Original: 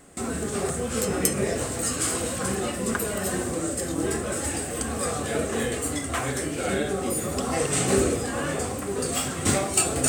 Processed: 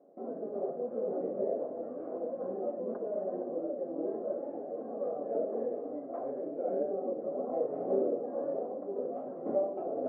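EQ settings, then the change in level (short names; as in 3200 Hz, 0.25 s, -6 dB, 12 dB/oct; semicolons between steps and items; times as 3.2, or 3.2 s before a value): HPF 230 Hz 24 dB/oct; ladder low-pass 670 Hz, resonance 65%; air absorption 92 m; 0.0 dB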